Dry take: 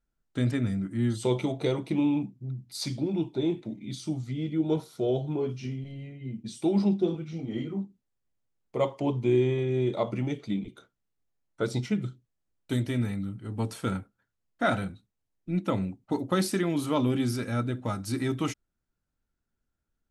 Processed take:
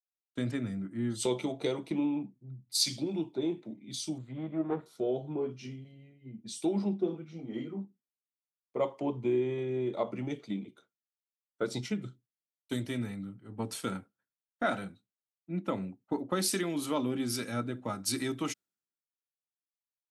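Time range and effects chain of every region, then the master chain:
0:04.18–0:04.86: lower of the sound and its delayed copy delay 0.54 ms + moving average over 8 samples
whole clip: high-pass filter 180 Hz 12 dB per octave; downward compressor 2.5 to 1, threshold −31 dBFS; multiband upward and downward expander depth 100%

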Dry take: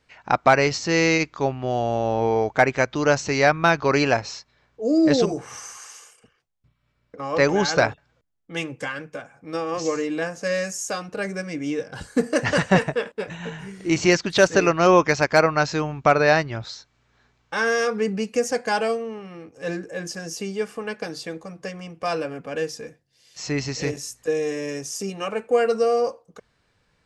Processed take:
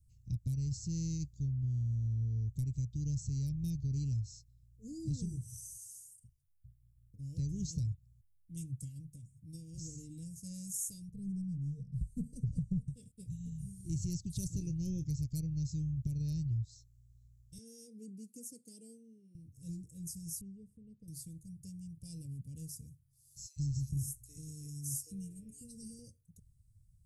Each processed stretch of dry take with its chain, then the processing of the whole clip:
0:11.10–0:12.88: low-pass filter 1,300 Hz 6 dB per octave + low-shelf EQ 210 Hz +10.5 dB + phaser with its sweep stopped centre 460 Hz, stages 8
0:14.48–0:15.25: high-shelf EQ 5,700 Hz −4 dB + double-tracking delay 26 ms −12.5 dB
0:17.58–0:19.35: high-pass filter 310 Hz 24 dB per octave + tilt shelving filter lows +8 dB, about 710 Hz
0:20.41–0:21.08: low-shelf EQ 230 Hz −7.5 dB + upward compression, threshold −40 dBFS + Savitzky-Golay smoothing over 65 samples
0:23.46–0:25.99: double-tracking delay 22 ms −14 dB + three-band delay without the direct sound highs, lows, mids 100/790 ms, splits 430/2,700 Hz
whole clip: Chebyshev band-stop filter 110–9,800 Hz, order 3; high-shelf EQ 6,200 Hz −4.5 dB; downward compressor 6 to 1, threshold −40 dBFS; level +8 dB

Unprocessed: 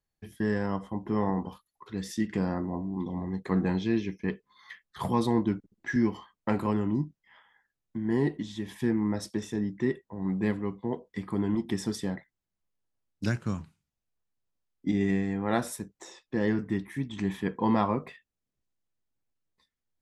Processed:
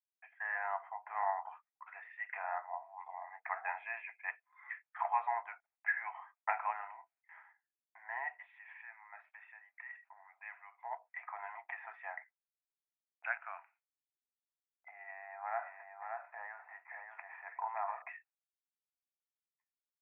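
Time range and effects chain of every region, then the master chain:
0:08.46–0:10.84: guitar amp tone stack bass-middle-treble 5-5-5 + envelope flattener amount 50%
0:14.88–0:18.02: low-pass filter 1,500 Hz + downward compressor 5 to 1, threshold −28 dBFS + single-tap delay 578 ms −5 dB
whole clip: noise gate with hold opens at −53 dBFS; Chebyshev band-pass filter 680–2,500 Hz, order 5; parametric band 1,100 Hz −6 dB 0.23 octaves; level +2.5 dB

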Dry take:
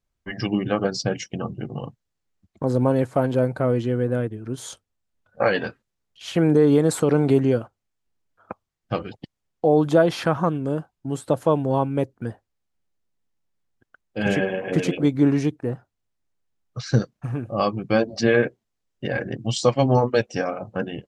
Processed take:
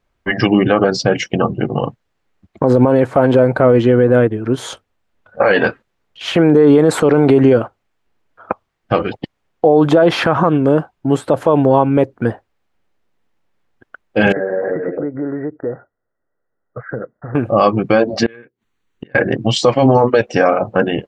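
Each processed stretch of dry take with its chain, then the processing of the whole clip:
0:14.32–0:17.35: downward compressor, threshold −27 dBFS + Chebyshev low-pass with heavy ripple 2,000 Hz, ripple 9 dB
0:18.26–0:19.15: gate with flip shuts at −25 dBFS, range −33 dB + Butterworth band-reject 5,100 Hz, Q 5.6 + parametric band 630 Hz −13 dB 0.69 octaves
whole clip: bass and treble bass −7 dB, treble −14 dB; boost into a limiter +17.5 dB; level −1 dB

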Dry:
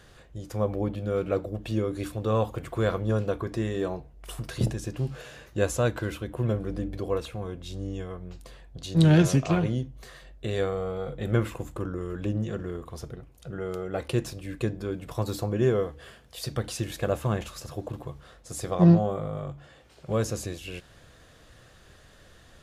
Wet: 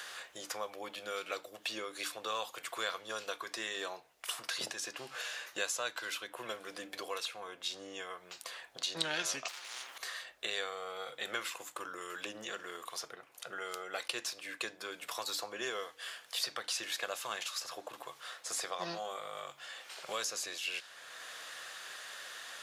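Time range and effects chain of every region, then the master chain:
0:09.48–0:09.98: lower of the sound and its delayed copy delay 2.2 ms + downward compressor, threshold −41 dBFS + every bin compressed towards the loudest bin 4 to 1
whole clip: high-pass filter 1,100 Hz 12 dB per octave; dynamic equaliser 4,800 Hz, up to +7 dB, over −54 dBFS, Q 0.97; multiband upward and downward compressor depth 70%

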